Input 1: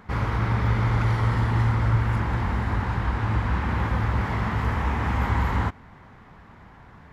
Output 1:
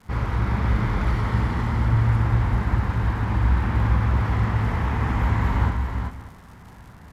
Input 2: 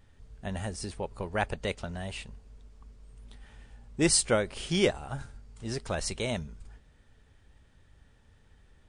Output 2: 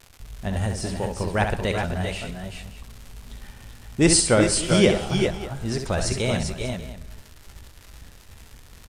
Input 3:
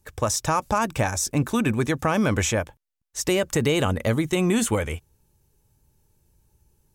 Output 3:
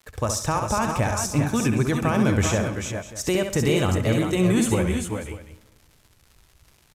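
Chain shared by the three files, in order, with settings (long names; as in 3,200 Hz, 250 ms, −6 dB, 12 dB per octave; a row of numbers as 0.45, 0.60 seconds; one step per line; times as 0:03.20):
downward expander −48 dBFS
low-shelf EQ 250 Hz +5 dB
reversed playback
upward compression, threshold −39 dBFS
reversed playback
surface crackle 190 per second −39 dBFS
multi-tap delay 66/131/381/384/400/593 ms −6.5/−17.5/−18/−10/−7/−17 dB
comb and all-pass reverb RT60 1.4 s, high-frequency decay 0.85×, pre-delay 25 ms, DRR 17.5 dB
downsampling to 32,000 Hz
loudness normalisation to −23 LKFS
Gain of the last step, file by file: −3.0, +5.0, −3.0 decibels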